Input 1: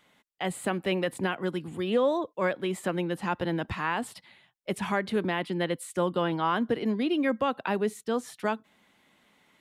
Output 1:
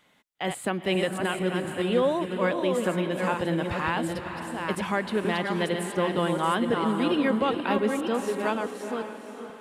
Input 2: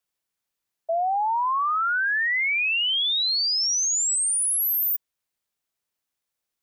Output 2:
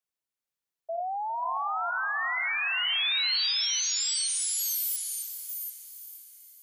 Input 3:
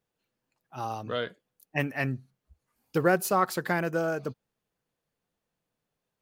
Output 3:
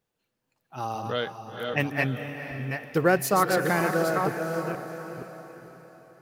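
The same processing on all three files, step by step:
delay that plays each chunk backwards 475 ms, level −5 dB
on a send: feedback delay with all-pass diffusion 477 ms, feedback 43%, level −8.5 dB
on the sum: dynamic equaliser 3,800 Hz, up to +4 dB, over −38 dBFS, Q 1.4
loudness normalisation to −27 LKFS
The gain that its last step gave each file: +1.0, −8.5, +2.0 decibels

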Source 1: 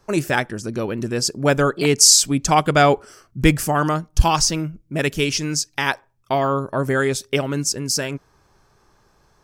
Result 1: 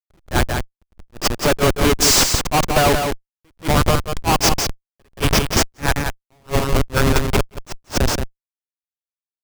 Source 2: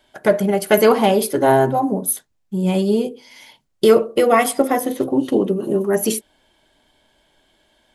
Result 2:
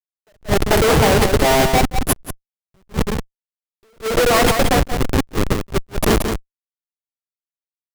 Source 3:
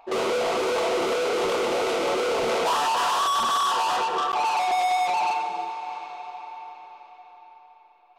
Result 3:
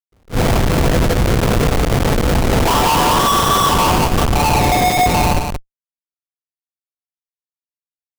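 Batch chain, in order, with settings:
meter weighting curve A
pitch vibrato 0.38 Hz 20 cents
comparator with hysteresis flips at −19 dBFS
single-tap delay 177 ms −6 dB
level that may rise only so fast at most 370 dB per second
normalise the peak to −6 dBFS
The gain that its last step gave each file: +9.0, +8.5, +12.0 decibels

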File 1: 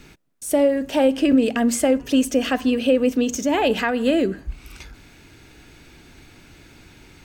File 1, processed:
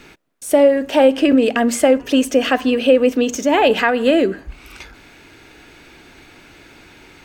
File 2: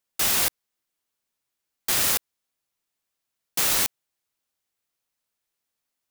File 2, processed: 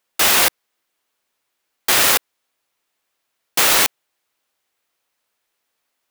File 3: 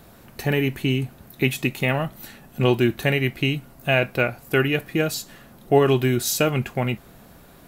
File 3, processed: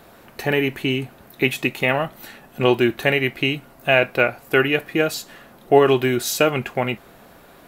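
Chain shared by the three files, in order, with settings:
bass and treble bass −10 dB, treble −6 dB
normalise the peak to −1.5 dBFS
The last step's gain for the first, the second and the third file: +7.0, +12.0, +4.5 decibels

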